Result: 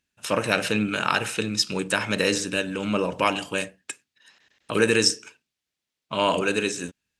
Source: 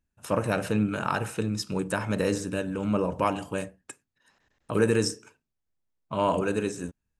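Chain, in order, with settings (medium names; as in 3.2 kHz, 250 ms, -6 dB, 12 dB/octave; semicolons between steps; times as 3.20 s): frequency weighting D; trim +2.5 dB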